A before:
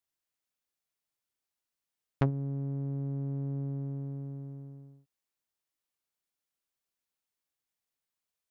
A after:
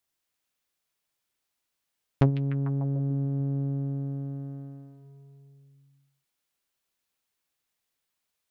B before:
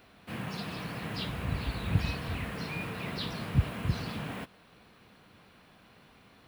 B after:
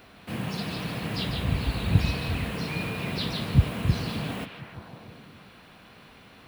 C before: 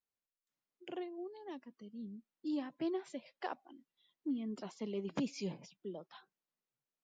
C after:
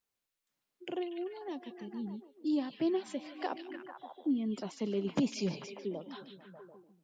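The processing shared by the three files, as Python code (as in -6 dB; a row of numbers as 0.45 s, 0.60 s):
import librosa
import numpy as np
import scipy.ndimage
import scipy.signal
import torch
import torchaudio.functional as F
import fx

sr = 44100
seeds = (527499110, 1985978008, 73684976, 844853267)

y = fx.echo_stepped(x, sr, ms=148, hz=3200.0, octaves=-0.7, feedback_pct=70, wet_db=-3.0)
y = fx.dynamic_eq(y, sr, hz=1500.0, q=0.74, threshold_db=-54.0, ratio=4.0, max_db=-5)
y = F.gain(torch.from_numpy(y), 6.5).numpy()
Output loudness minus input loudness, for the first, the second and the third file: +6.0 LU, +6.0 LU, +6.0 LU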